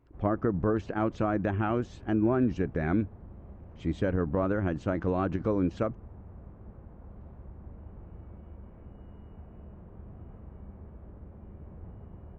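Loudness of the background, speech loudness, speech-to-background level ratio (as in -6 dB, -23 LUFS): -49.0 LUFS, -29.5 LUFS, 19.5 dB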